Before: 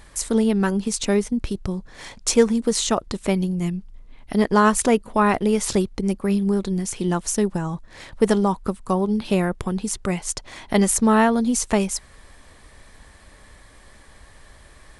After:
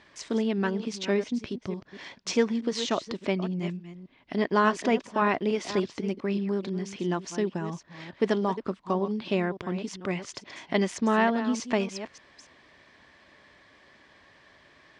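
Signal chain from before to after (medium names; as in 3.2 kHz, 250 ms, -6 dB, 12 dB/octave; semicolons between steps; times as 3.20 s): chunks repeated in reverse 290 ms, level -12 dB; cabinet simulation 200–4900 Hz, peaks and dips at 210 Hz -4 dB, 480 Hz -6 dB, 820 Hz -5 dB, 1.3 kHz -5 dB, 4.1 kHz -4 dB; trim -2.5 dB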